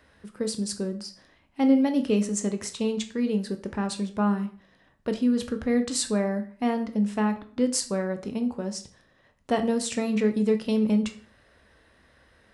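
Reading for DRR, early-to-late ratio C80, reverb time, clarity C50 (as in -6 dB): 7.0 dB, 17.5 dB, 0.45 s, 13.0 dB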